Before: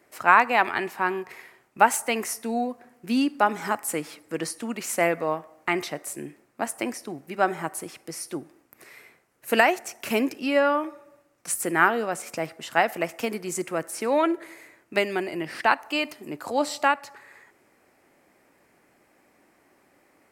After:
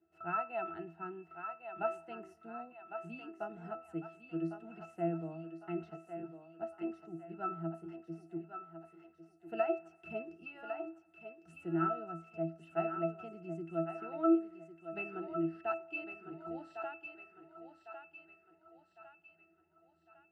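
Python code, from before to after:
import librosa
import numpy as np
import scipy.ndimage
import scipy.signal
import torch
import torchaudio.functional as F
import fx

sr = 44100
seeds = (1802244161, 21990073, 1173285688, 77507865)

y = fx.octave_resonator(x, sr, note='E', decay_s=0.28)
y = fx.echo_thinned(y, sr, ms=1104, feedback_pct=49, hz=450.0, wet_db=-7)
y = y * librosa.db_to_amplitude(1.0)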